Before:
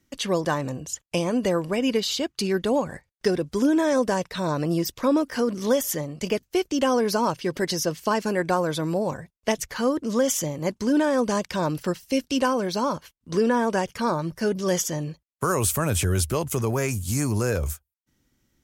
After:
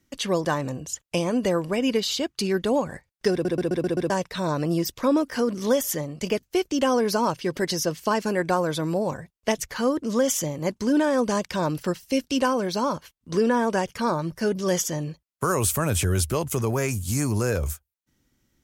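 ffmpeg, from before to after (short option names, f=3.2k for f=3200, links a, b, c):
-filter_complex "[0:a]asplit=7[a][b][c][d][e][f][g];[a]atrim=end=3.452[h];[b]atrim=start=3.318:end=3.452[i];[c]atrim=start=3.318:end=3.452[j];[d]atrim=start=3.318:end=3.452[k];[e]atrim=start=3.318:end=3.452[l];[f]atrim=start=3.318:end=3.452[m];[g]atrim=start=4.098[n];[h][i]acrossfade=d=0.004:c1=hsin:c2=hsin[o];[o][j]acrossfade=d=0.004:c1=hsin:c2=hsin[p];[p][k]acrossfade=d=0.004:c1=hsin:c2=hsin[q];[q][l]acrossfade=d=0.004:c1=hsin:c2=hsin[r];[r][m]acrossfade=d=0.004:c1=hsin:c2=hsin[s];[s][n]acrossfade=d=0.004:c1=hsin:c2=hsin"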